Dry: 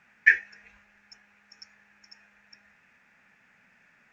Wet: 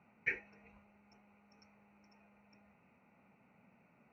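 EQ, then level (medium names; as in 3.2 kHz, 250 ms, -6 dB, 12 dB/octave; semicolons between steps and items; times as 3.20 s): boxcar filter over 26 samples; high-pass 75 Hz; +3.5 dB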